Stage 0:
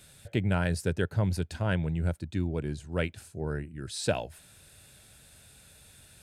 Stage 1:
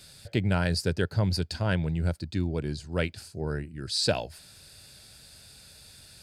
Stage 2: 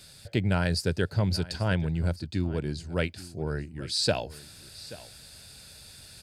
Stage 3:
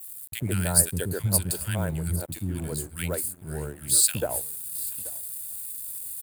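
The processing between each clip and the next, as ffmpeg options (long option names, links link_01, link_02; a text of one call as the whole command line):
ffmpeg -i in.wav -af "equalizer=frequency=4700:width=3.6:gain=14.5,volume=1.5dB" out.wav
ffmpeg -i in.wav -af "areverse,acompressor=mode=upward:threshold=-43dB:ratio=2.5,areverse,aecho=1:1:832:0.126" out.wav
ffmpeg -i in.wav -filter_complex "[0:a]acrossover=split=290|1500[link_01][link_02][link_03];[link_01]adelay=70[link_04];[link_02]adelay=140[link_05];[link_04][link_05][link_03]amix=inputs=3:normalize=0,aeval=exprs='sgn(val(0))*max(abs(val(0))-0.00316,0)':channel_layout=same,aexciter=amount=13:drive=8:freq=8100" out.wav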